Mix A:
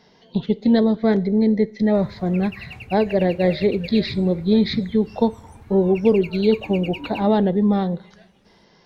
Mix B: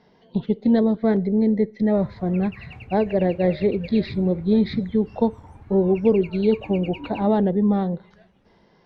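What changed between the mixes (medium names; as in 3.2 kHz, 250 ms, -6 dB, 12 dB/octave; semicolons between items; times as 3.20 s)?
speech: send -6.0 dB; master: add low-pass 1.6 kHz 6 dB/octave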